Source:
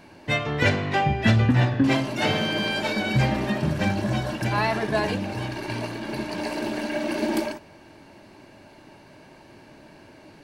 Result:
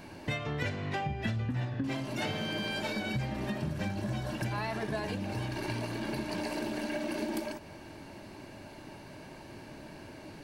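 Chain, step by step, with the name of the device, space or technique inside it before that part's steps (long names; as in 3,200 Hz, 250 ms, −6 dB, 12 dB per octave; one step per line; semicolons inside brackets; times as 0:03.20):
ASMR close-microphone chain (low-shelf EQ 170 Hz +5 dB; downward compressor 6 to 1, threshold −32 dBFS, peak gain reduction 18.5 dB; high-shelf EQ 7,600 Hz +5.5 dB)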